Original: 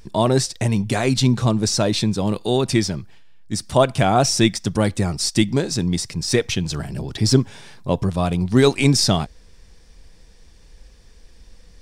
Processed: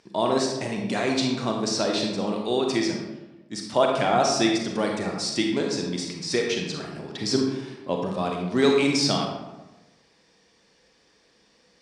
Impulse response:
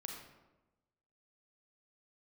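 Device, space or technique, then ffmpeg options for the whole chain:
supermarket ceiling speaker: -filter_complex "[0:a]highpass=270,lowpass=6200[s0];[1:a]atrim=start_sample=2205[s1];[s0][s1]afir=irnorm=-1:irlink=0"

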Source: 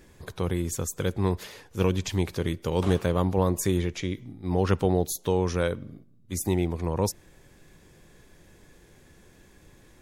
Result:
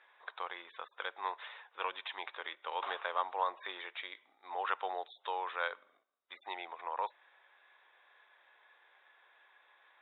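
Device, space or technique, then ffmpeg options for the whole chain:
musical greeting card: -af "aresample=8000,aresample=44100,highpass=f=830:w=0.5412,highpass=f=830:w=1.3066,lowpass=1900,equalizer=f=3700:t=o:w=0.23:g=11.5,volume=1.12"

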